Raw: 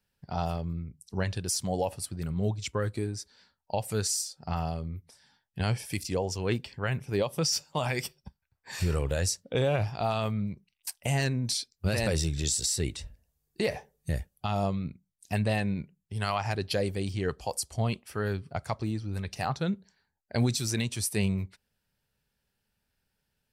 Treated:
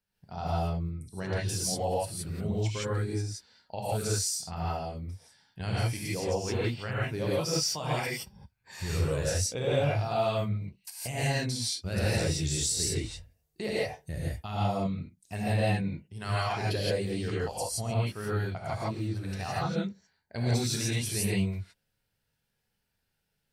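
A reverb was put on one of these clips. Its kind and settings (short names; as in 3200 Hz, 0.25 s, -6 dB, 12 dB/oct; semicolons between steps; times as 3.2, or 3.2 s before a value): non-linear reverb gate 0.19 s rising, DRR -7.5 dB; gain -8 dB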